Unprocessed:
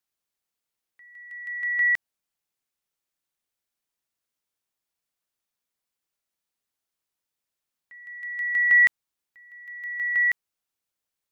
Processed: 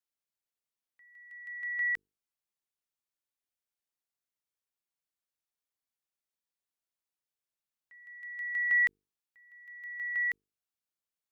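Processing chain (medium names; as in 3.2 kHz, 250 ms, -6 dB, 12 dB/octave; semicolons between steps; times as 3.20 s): hum notches 50/100/150/200/250/300/350/400/450 Hz; trim -9 dB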